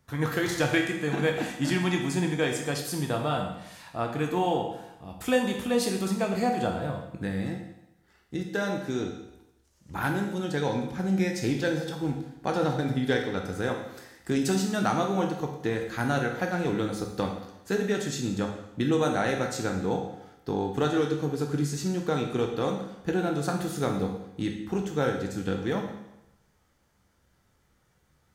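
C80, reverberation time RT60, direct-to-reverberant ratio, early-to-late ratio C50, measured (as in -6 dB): 8.0 dB, 0.90 s, 2.0 dB, 5.5 dB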